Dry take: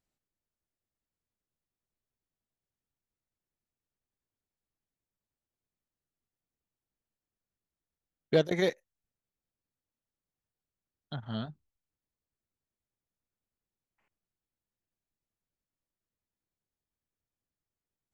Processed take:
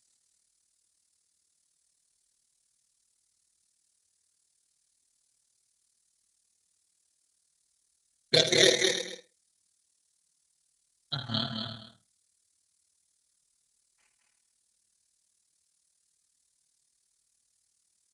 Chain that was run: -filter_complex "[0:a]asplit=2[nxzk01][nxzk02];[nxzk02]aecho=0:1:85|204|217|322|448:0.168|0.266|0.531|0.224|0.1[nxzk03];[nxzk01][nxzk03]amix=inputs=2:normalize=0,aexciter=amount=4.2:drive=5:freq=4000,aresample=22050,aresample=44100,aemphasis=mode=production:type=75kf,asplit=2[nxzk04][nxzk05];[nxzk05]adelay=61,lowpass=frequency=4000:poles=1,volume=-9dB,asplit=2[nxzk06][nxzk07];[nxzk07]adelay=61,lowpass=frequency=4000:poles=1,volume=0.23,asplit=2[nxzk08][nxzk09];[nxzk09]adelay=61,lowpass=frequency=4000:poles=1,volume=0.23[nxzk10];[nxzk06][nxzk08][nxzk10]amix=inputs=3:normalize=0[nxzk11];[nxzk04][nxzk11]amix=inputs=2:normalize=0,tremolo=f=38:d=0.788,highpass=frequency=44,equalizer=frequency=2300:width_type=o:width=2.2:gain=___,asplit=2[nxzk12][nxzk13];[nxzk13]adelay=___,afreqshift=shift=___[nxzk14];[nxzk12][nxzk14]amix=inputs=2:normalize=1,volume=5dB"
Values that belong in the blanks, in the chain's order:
7.5, 5.5, -0.35